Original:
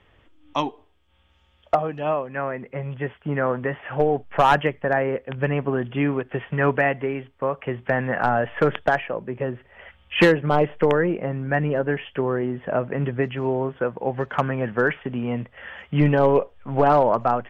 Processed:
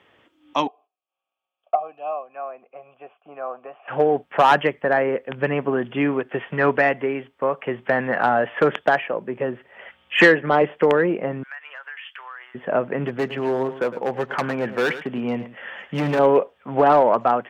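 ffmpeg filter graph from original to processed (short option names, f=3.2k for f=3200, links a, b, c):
-filter_complex "[0:a]asettb=1/sr,asplit=3[a][b][c];[a]atrim=end=0.674[d];[b]atrim=start=0.67:end=3.88,asetpts=PTS-STARTPTS,afade=t=in:d=0.004:c=qsin,afade=t=out:st=3.206:d=0.004:c=qsin,agate=range=-11dB:threshold=-59dB:ratio=16:release=100:detection=peak,asplit=3[e][f][g];[e]bandpass=f=730:t=q:w=8,volume=0dB[h];[f]bandpass=f=1.09k:t=q:w=8,volume=-6dB[i];[g]bandpass=f=2.44k:t=q:w=8,volume=-9dB[j];[h][i][j]amix=inputs=3:normalize=0[k];[c]atrim=start=3.876[l];[d][k]acrossfade=d=0.004:c1=hsin:c2=qsin[m];[m][l]acrossfade=d=0.004:c1=qsin:c2=hsin,asettb=1/sr,asplit=3[n][o][p];[n]atrim=end=10.144[q];[o]atrim=start=10.14:end=10.63,asetpts=PTS-STARTPTS,afade=t=in:d=0.004:c=qsin,afade=t=out:st=0.486:d=0.004:c=qsin,highpass=130,lowpass=4.7k,equalizer=f=1.8k:t=o:w=0.39:g=8.5[r];[p]atrim=start=10.626[s];[q][r]acrossfade=d=0.004:c1=hsin:c2=qsin[t];[t][s]acrossfade=d=0.004:c1=qsin:c2=hsin,asettb=1/sr,asplit=3[u][v][w];[u]atrim=end=11.434[x];[v]atrim=start=11.43:end=12.55,asetpts=PTS-STARTPTS,afade=t=in:d=0.004:c=qsin,afade=t=out:st=1.116:d=0.004:c=qsin,highpass=f=1.2k:w=0.5412,highpass=f=1.2k:w=1.3066,acompressor=threshold=-36dB:ratio=5:attack=3.2:release=140:knee=1:detection=peak[y];[w]atrim=start=12.546[z];[x][y]acrossfade=d=0.004:c1=hsin:c2=qsin[aa];[aa][z]acrossfade=d=0.004:c1=qsin:c2=hsin,asettb=1/sr,asplit=3[ab][ac][ad];[ab]atrim=end=13.064[ae];[ac]atrim=start=13.06:end=16.19,asetpts=PTS-STARTPTS,afade=t=in:d=0.004:c=qsin,afade=t=out:st=3.126:d=0.004:c=qsin,asoftclip=type=hard:threshold=-19dB,aecho=1:1:109:0.211,atrim=end_sample=138033[af];[ad]atrim=start=16.186[ag];[ae][af]acrossfade=d=0.004:c1=hsin:c2=qsin[ah];[ah][ag]acrossfade=d=0.004:c1=qsin:c2=hsin,highpass=210,acontrast=34,volume=-2.5dB"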